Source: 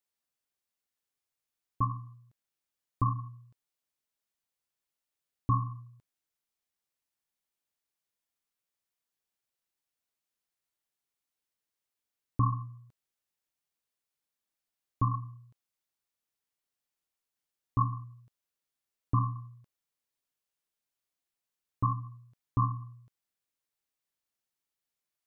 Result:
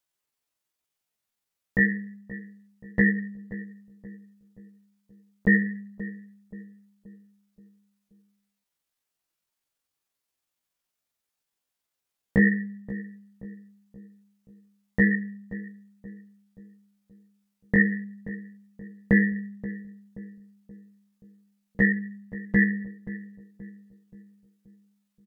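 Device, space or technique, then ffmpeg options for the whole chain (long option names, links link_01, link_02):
chipmunk voice: -filter_complex "[0:a]asplit=3[link_01][link_02][link_03];[link_01]afade=type=out:start_time=21.9:duration=0.02[link_04];[link_02]equalizer=frequency=330:width_type=o:width=0.78:gain=-6,afade=type=in:start_time=21.9:duration=0.02,afade=type=out:start_time=22.73:duration=0.02[link_05];[link_03]afade=type=in:start_time=22.73:duration=0.02[link_06];[link_04][link_05][link_06]amix=inputs=3:normalize=0,asetrate=74167,aresample=44100,atempo=0.594604,asplit=2[link_07][link_08];[link_08]adelay=528,lowpass=frequency=940:poles=1,volume=-14dB,asplit=2[link_09][link_10];[link_10]adelay=528,lowpass=frequency=940:poles=1,volume=0.49,asplit=2[link_11][link_12];[link_12]adelay=528,lowpass=frequency=940:poles=1,volume=0.49,asplit=2[link_13][link_14];[link_14]adelay=528,lowpass=frequency=940:poles=1,volume=0.49,asplit=2[link_15][link_16];[link_16]adelay=528,lowpass=frequency=940:poles=1,volume=0.49[link_17];[link_07][link_09][link_11][link_13][link_15][link_17]amix=inputs=6:normalize=0,volume=7.5dB"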